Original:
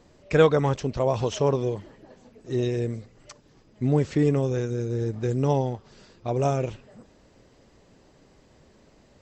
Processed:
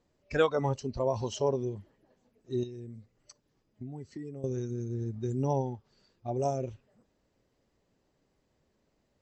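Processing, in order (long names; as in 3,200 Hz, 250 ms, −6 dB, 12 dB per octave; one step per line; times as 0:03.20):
noise reduction from a noise print of the clip's start 13 dB
0:02.63–0:04.44: downward compressor 4 to 1, threshold −37 dBFS, peak gain reduction 15 dB
level −4.5 dB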